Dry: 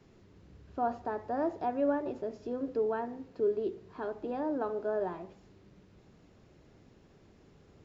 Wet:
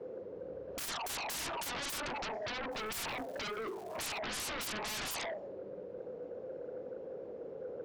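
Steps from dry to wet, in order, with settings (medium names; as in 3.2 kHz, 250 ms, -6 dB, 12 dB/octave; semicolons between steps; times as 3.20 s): auto-wah 490–1400 Hz, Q 13, up, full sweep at -27 dBFS; sine folder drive 17 dB, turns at -47.5 dBFS; 2.71–4.18 s: crackle 460 per s -59 dBFS; trim +11.5 dB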